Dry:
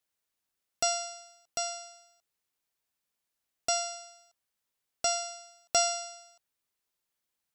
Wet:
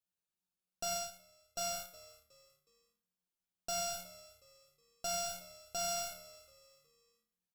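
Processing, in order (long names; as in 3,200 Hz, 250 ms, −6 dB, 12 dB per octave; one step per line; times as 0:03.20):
in parallel at −9.5 dB: fuzz pedal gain 41 dB, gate −43 dBFS
on the sum: parametric band 180 Hz +11 dB 0.24 octaves
notch filter 2,000 Hz, Q 5.3
tuned comb filter 180 Hz, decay 0.55 s, harmonics all, mix 80%
brickwall limiter −32 dBFS, peak gain reduction 11 dB
low-shelf EQ 280 Hz +5 dB
on a send: echo with shifted repeats 366 ms, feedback 37%, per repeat −74 Hz, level −19.5 dB
0:00.89–0:01.61: on the sum: expander for the loud parts 2.5 to 1, over −44 dBFS
level +1 dB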